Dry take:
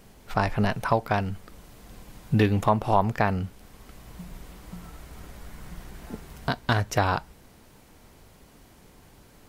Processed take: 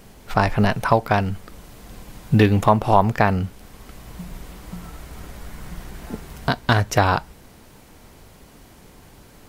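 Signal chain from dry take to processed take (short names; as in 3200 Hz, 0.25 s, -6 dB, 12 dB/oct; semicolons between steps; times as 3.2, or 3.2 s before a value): short-mantissa float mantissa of 6-bit; gain +6 dB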